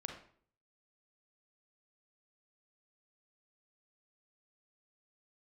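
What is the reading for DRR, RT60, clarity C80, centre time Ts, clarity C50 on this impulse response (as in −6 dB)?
2.5 dB, 0.55 s, 10.0 dB, 26 ms, 5.0 dB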